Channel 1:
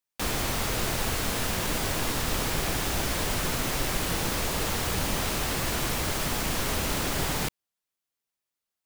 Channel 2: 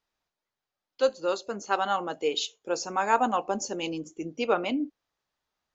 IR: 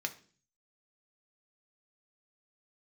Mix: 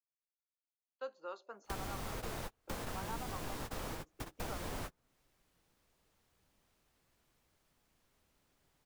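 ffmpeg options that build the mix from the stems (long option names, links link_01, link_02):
-filter_complex "[0:a]adelay=1450,volume=-4.5dB[link_01];[1:a]agate=range=-26dB:threshold=-44dB:ratio=16:detection=peak,bandpass=frequency=1100:width_type=q:width=1.4:csg=0,volume=-8.5dB,asplit=2[link_02][link_03];[link_03]apad=whole_len=454621[link_04];[link_01][link_04]sidechaingate=range=-43dB:threshold=-53dB:ratio=16:detection=peak[link_05];[link_05][link_02]amix=inputs=2:normalize=0,acrossover=split=450|1500[link_06][link_07][link_08];[link_06]acompressor=threshold=-42dB:ratio=4[link_09];[link_07]acompressor=threshold=-46dB:ratio=4[link_10];[link_08]acompressor=threshold=-51dB:ratio=4[link_11];[link_09][link_10][link_11]amix=inputs=3:normalize=0"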